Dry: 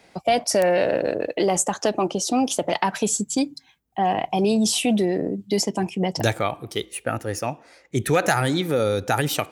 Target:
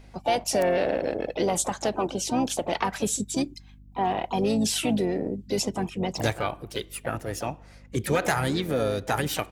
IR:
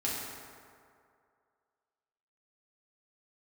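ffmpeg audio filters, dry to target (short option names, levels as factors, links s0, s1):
-filter_complex "[0:a]aeval=exprs='val(0)+0.00631*(sin(2*PI*50*n/s)+sin(2*PI*2*50*n/s)/2+sin(2*PI*3*50*n/s)/3+sin(2*PI*4*50*n/s)/4+sin(2*PI*5*50*n/s)/5)':c=same,asplit=4[s0][s1][s2][s3];[s1]asetrate=22050,aresample=44100,atempo=2,volume=0.178[s4];[s2]asetrate=33038,aresample=44100,atempo=1.33484,volume=0.158[s5];[s3]asetrate=55563,aresample=44100,atempo=0.793701,volume=0.316[s6];[s0][s4][s5][s6]amix=inputs=4:normalize=0,volume=0.562"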